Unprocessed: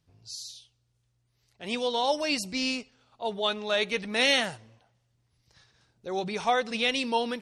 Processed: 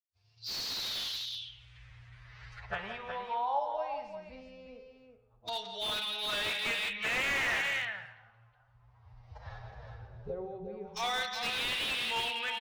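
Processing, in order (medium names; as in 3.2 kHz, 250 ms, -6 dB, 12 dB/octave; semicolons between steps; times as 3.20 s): recorder AGC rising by 27 dB/s; expander -52 dBFS; amplifier tone stack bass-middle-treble 10-0-10; LFO low-pass saw down 0.31 Hz 340–5300 Hz; loudspeakers at several distances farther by 35 m -10 dB, 74 m -7 dB; time stretch by phase-locked vocoder 1.7×; on a send at -8 dB: reverberation RT60 0.70 s, pre-delay 35 ms; on the sum: slew-rate limiter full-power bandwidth 71 Hz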